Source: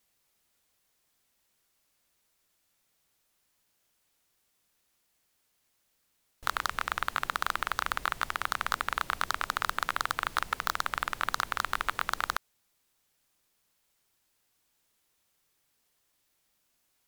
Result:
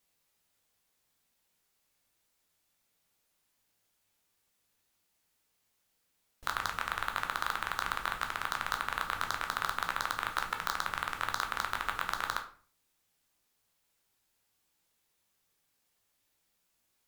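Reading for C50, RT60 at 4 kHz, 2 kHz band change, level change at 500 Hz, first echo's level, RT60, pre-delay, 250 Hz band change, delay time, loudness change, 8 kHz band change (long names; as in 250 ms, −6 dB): 11.0 dB, 0.35 s, −2.5 dB, −2.5 dB, no echo audible, 0.45 s, 10 ms, −1.5 dB, no echo audible, −2.5 dB, −3.0 dB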